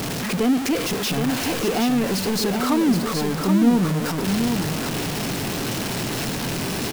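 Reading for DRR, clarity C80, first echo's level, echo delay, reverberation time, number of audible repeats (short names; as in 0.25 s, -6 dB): none, none, -5.5 dB, 0.772 s, none, 1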